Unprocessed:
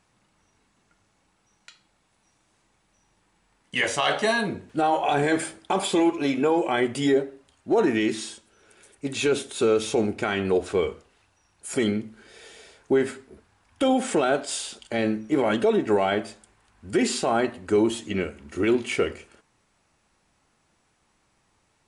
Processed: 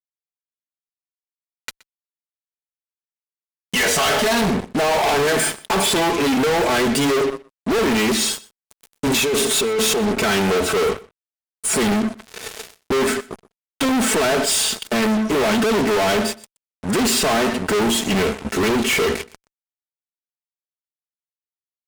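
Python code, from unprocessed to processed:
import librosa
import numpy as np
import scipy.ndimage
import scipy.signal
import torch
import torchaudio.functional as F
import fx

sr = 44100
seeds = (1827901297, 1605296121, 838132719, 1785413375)

y = scipy.signal.sosfilt(scipy.signal.butter(4, 45.0, 'highpass', fs=sr, output='sos'), x)
y = y + 0.67 * np.pad(y, (int(4.6 * sr / 1000.0), 0))[:len(y)]
y = fx.over_compress(y, sr, threshold_db=-29.0, ratio=-1.0, at=(9.06, 10.11))
y = fx.fuzz(y, sr, gain_db=39.0, gate_db=-43.0)
y = y + 10.0 ** (-22.0 / 20.0) * np.pad(y, (int(123 * sr / 1000.0), 0))[:len(y)]
y = y * librosa.db_to_amplitude(-3.5)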